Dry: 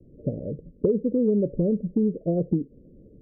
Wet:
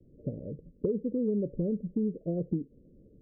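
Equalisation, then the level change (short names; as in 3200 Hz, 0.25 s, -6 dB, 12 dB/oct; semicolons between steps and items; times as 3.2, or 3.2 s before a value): dynamic EQ 700 Hz, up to -4 dB, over -42 dBFS, Q 2.2; air absorption 290 m; -6.5 dB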